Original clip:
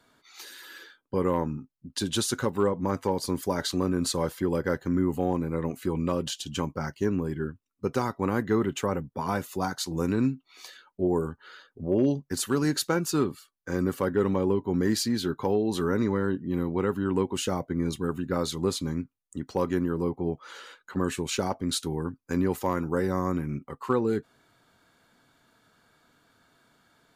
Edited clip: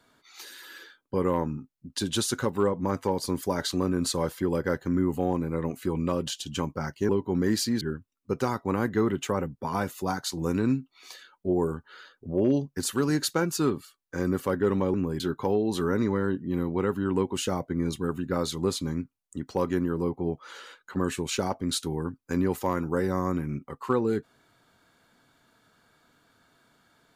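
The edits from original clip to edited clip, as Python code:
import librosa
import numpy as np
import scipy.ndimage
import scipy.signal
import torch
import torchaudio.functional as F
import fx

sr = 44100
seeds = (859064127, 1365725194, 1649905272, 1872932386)

y = fx.edit(x, sr, fx.swap(start_s=7.09, length_s=0.26, other_s=14.48, other_length_s=0.72), tone=tone)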